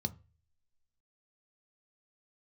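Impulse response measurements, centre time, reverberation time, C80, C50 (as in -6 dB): 3 ms, 0.35 s, 27.0 dB, 22.0 dB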